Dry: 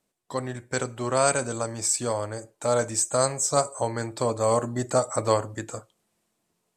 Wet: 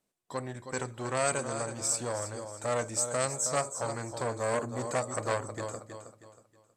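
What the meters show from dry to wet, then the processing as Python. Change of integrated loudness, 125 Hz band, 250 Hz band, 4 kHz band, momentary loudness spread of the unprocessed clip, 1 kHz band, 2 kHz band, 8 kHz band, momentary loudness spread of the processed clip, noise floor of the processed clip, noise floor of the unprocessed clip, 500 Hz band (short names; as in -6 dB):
-6.5 dB, -6.5 dB, -7.5 dB, -6.5 dB, 11 LU, -6.5 dB, -2.5 dB, -5.5 dB, 10 LU, -73 dBFS, -77 dBFS, -7.5 dB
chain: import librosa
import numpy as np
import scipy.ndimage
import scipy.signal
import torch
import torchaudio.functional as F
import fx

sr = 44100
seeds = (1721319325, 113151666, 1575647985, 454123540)

p1 = x + fx.echo_feedback(x, sr, ms=318, feedback_pct=34, wet_db=-10.0, dry=0)
p2 = fx.transformer_sat(p1, sr, knee_hz=1800.0)
y = p2 * librosa.db_to_amplitude(-5.0)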